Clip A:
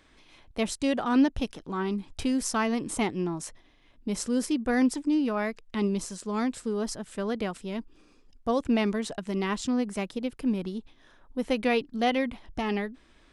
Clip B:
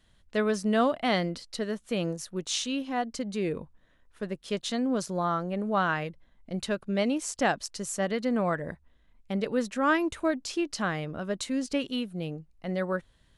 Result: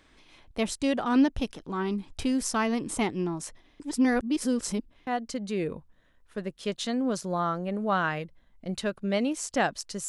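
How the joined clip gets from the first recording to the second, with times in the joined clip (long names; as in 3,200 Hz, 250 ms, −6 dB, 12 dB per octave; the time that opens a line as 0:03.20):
clip A
0:03.80–0:05.07: reverse
0:05.07: continue with clip B from 0:02.92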